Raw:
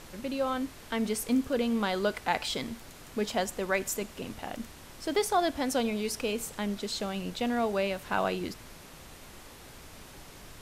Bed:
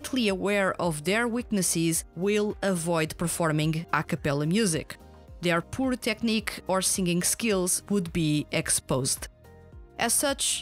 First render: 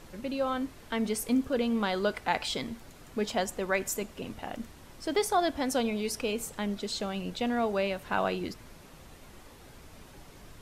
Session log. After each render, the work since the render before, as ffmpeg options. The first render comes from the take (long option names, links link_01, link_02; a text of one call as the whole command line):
ffmpeg -i in.wav -af "afftdn=noise_reduction=6:noise_floor=-50" out.wav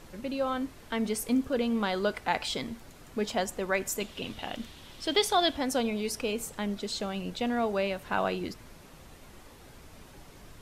ffmpeg -i in.wav -filter_complex "[0:a]asettb=1/sr,asplit=3[link_01][link_02][link_03];[link_01]atrim=end=4.004[link_04];[link_02]atrim=start=4:end=5.57,asetpts=PTS-STARTPTS,afade=type=in:duration=0.004:curve=qsin,afade=type=out:start_time=1.566:duration=0.004:curve=qsin,equalizer=frequency=3400:width=1.5:gain=12[link_05];[link_03]atrim=start=5.566[link_06];[link_04][link_05]acrossfade=duration=0.004:curve1=hsin:curve2=qsin[link_07];[link_07][link_06]acrossfade=duration=0.004:curve1=qsin:curve2=hsin" out.wav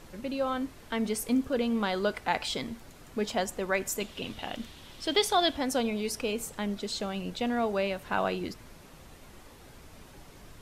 ffmpeg -i in.wav -af anull out.wav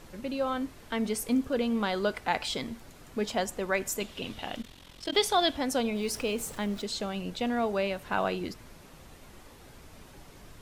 ffmpeg -i in.wav -filter_complex "[0:a]asplit=3[link_01][link_02][link_03];[link_01]afade=type=out:start_time=4.62:duration=0.02[link_04];[link_02]aeval=exprs='val(0)*sin(2*PI*22*n/s)':channel_layout=same,afade=type=in:start_time=4.62:duration=0.02,afade=type=out:start_time=5.11:duration=0.02[link_05];[link_03]afade=type=in:start_time=5.11:duration=0.02[link_06];[link_04][link_05][link_06]amix=inputs=3:normalize=0,asettb=1/sr,asplit=3[link_07][link_08][link_09];[link_07]atrim=end=5.954[link_10];[link_08]atrim=start=5.95:end=6.82,asetpts=PTS-STARTPTS,afade=type=in:duration=0.004:curve=qsin,afade=type=out:start_time=0.866:duration=0.004:curve=qsin,aeval=exprs='val(0)+0.5*0.00631*sgn(val(0))':channel_layout=same[link_11];[link_09]atrim=start=6.816[link_12];[link_10][link_11]acrossfade=duration=0.004:curve1=hsin:curve2=qsin[link_13];[link_13][link_12]acrossfade=duration=0.004:curve1=qsin:curve2=hsin" out.wav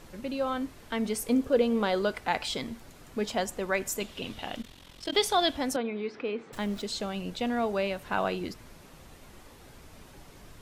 ffmpeg -i in.wav -filter_complex "[0:a]asettb=1/sr,asplit=3[link_01][link_02][link_03];[link_01]atrim=end=1.294[link_04];[link_02]atrim=start=1.29:end=2.02,asetpts=PTS-STARTPTS,afade=type=in:duration=0.004:curve=qsin,afade=type=out:start_time=0.726:duration=0.004:curve=qsin,equalizer=frequency=490:width_type=o:width=0.77:gain=7[link_05];[link_03]atrim=start=2.016[link_06];[link_04][link_05]acrossfade=duration=0.004:curve1=hsin:curve2=qsin[link_07];[link_07][link_06]acrossfade=duration=0.004:curve1=qsin:curve2=hsin,asettb=1/sr,asplit=3[link_08][link_09][link_10];[link_08]atrim=end=5.764[link_11];[link_09]atrim=start=5.76:end=6.53,asetpts=PTS-STARTPTS,afade=type=in:duration=0.004:curve=qsin,afade=type=out:start_time=0.766:duration=0.004:curve=qsin,highpass=250,equalizer=frequency=340:width_type=q:width=4:gain=4,equalizer=frequency=610:width_type=q:width=4:gain=-7,equalizer=frequency=930:width_type=q:width=4:gain=-4,equalizer=frequency=2900:width_type=q:width=4:gain=-8,lowpass=frequency=3100:width=0.5412,lowpass=frequency=3100:width=1.3066[link_12];[link_10]atrim=start=6.526[link_13];[link_11][link_12]acrossfade=duration=0.004:curve1=hsin:curve2=qsin[link_14];[link_14][link_13]acrossfade=duration=0.004:curve1=qsin:curve2=hsin" out.wav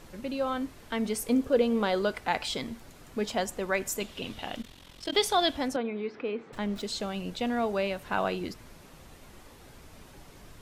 ffmpeg -i in.wav -filter_complex "[0:a]asettb=1/sr,asplit=3[link_01][link_02][link_03];[link_01]atrim=end=5.684[link_04];[link_02]atrim=start=5.68:end=6.76,asetpts=PTS-STARTPTS,afade=type=in:duration=0.004:curve=qsin,afade=type=out:start_time=1.076:duration=0.004:curve=qsin,lowpass=frequency=3400:poles=1[link_05];[link_03]atrim=start=6.756[link_06];[link_04][link_05]acrossfade=duration=0.004:curve1=hsin:curve2=qsin[link_07];[link_07][link_06]acrossfade=duration=0.004:curve1=qsin:curve2=hsin" out.wav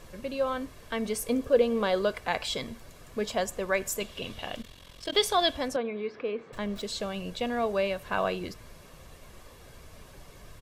ffmpeg -i in.wav -af "aecho=1:1:1.8:0.38" out.wav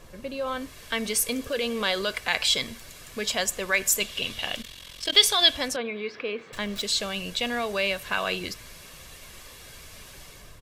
ffmpeg -i in.wav -filter_complex "[0:a]acrossover=split=1700[link_01][link_02];[link_01]alimiter=limit=-23dB:level=0:latency=1[link_03];[link_02]dynaudnorm=framelen=410:gausssize=3:maxgain=11dB[link_04];[link_03][link_04]amix=inputs=2:normalize=0" out.wav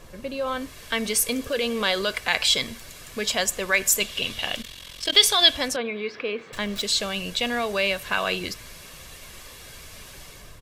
ffmpeg -i in.wav -af "volume=2.5dB,alimiter=limit=-3dB:level=0:latency=1" out.wav